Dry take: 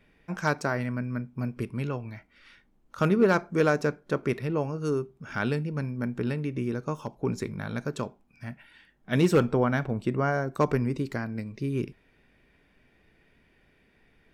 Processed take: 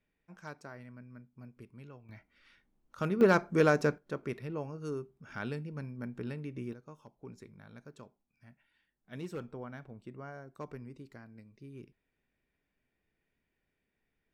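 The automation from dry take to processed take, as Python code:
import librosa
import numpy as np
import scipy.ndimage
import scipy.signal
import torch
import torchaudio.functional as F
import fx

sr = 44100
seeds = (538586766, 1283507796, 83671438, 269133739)

y = fx.gain(x, sr, db=fx.steps((0.0, -19.5), (2.09, -9.0), (3.21, -2.0), (3.98, -10.0), (6.73, -19.5)))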